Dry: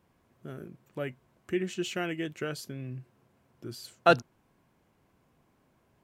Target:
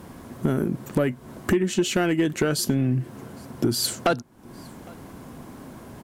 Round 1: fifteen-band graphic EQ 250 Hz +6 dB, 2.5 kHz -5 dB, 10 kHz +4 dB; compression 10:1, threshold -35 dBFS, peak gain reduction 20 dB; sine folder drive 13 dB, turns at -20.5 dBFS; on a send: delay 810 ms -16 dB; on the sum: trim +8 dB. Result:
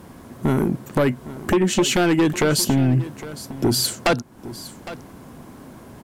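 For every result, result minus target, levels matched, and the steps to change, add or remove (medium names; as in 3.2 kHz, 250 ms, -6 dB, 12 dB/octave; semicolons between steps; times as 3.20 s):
echo-to-direct +11 dB; compression: peak gain reduction -7 dB
change: delay 810 ms -27 dB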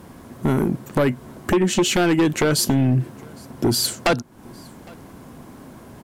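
compression: peak gain reduction -7 dB
change: compression 10:1, threshold -42.5 dBFS, peak gain reduction 26.5 dB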